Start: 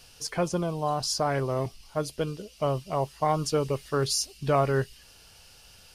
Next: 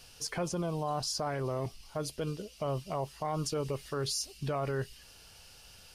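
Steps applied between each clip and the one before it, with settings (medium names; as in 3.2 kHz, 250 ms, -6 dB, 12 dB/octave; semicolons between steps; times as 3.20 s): peak limiter -23.5 dBFS, peak gain reduction 10.5 dB; trim -1.5 dB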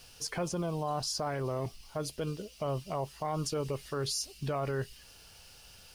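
added noise blue -71 dBFS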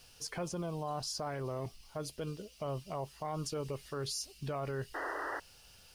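painted sound noise, 4.94–5.40 s, 280–2000 Hz -34 dBFS; trim -4.5 dB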